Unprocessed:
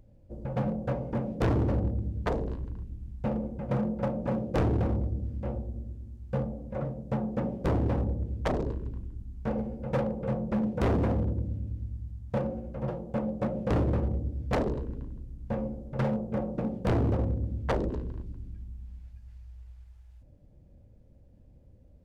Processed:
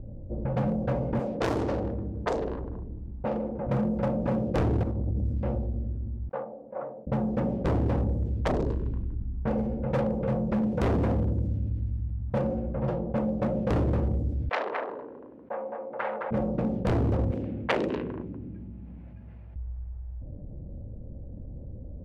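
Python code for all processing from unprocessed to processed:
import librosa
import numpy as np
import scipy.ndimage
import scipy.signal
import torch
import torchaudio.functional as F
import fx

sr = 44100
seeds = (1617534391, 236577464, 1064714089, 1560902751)

y = fx.chain(x, sr, fx.bass_treble(bass_db=-12, treble_db=9),
    fx.echo_feedback(ms=153, feedback_pct=45, wet_db=-21.5), at=(1.19, 3.67))
y = fx.chain(y, sr, fx.peak_eq(hz=2500.0, db=-8.0, octaves=2.9),
    fx.over_compress(threshold_db=-31.0, ratio=-0.5),
    fx.doppler_dist(depth_ms=0.32), at=(4.83, 5.37))
y = fx.chain(y, sr, fx.highpass(hz=770.0, slope=12),
    fx.upward_expand(threshold_db=-59.0, expansion=1.5), at=(6.29, 7.07))
y = fx.chain(y, sr, fx.bandpass_edges(low_hz=590.0, high_hz=2500.0),
    fx.tilt_eq(slope=4.5),
    fx.echo_single(ms=216, db=-5.5), at=(14.49, 16.31))
y = fx.chain(y, sr, fx.highpass(hz=210.0, slope=12),
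    fx.peak_eq(hz=2500.0, db=13.0, octaves=1.3), at=(17.31, 19.56))
y = fx.env_lowpass(y, sr, base_hz=510.0, full_db=-25.5)
y = fx.env_flatten(y, sr, amount_pct=50)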